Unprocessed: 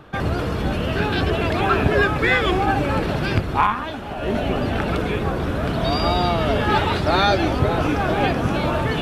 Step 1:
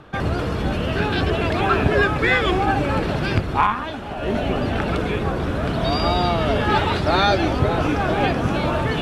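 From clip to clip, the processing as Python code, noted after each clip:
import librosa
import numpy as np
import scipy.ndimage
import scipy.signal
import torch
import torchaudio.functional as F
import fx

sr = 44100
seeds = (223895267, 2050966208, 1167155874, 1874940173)

y = scipy.signal.sosfilt(scipy.signal.butter(2, 11000.0, 'lowpass', fs=sr, output='sos'), x)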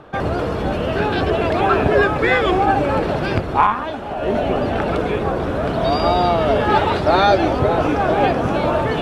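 y = fx.peak_eq(x, sr, hz=610.0, db=8.0, octaves=2.1)
y = y * librosa.db_to_amplitude(-2.0)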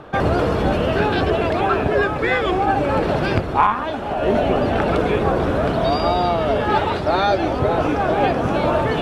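y = fx.rider(x, sr, range_db=4, speed_s=0.5)
y = y * librosa.db_to_amplitude(-1.0)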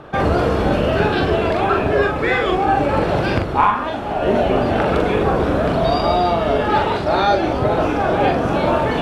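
y = fx.doubler(x, sr, ms=42.0, db=-4.0)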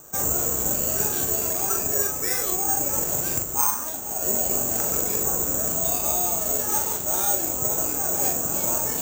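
y = (np.kron(x[::6], np.eye(6)[0]) * 6)[:len(x)]
y = y * librosa.db_to_amplitude(-15.0)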